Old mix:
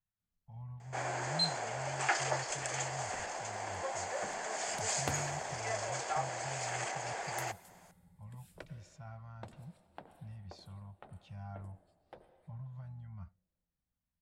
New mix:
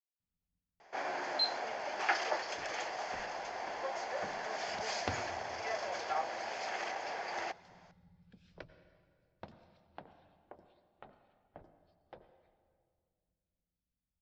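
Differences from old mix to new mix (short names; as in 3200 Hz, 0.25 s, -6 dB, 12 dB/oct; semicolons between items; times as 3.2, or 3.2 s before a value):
speech: muted; master: add steep low-pass 5700 Hz 48 dB/oct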